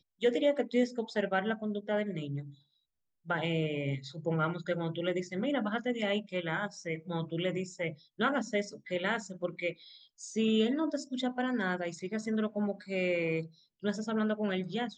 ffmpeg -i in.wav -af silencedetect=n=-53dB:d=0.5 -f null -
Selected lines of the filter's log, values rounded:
silence_start: 2.55
silence_end: 3.26 | silence_duration: 0.71